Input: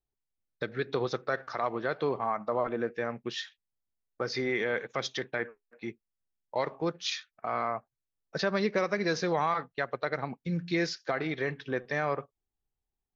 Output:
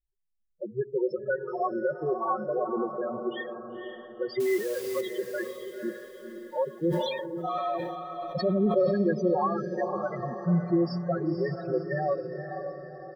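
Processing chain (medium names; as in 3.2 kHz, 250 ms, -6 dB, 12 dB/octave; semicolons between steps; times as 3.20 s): peaking EQ 4.1 kHz -6 dB 1.6 oct; comb 5.5 ms, depth 63%; loudest bins only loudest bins 4; 4.40–5.01 s: word length cut 8-bit, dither triangular; echo that smears into a reverb 521 ms, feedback 47%, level -7 dB; 6.75–8.98 s: decay stretcher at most 33 dB/s; trim +3.5 dB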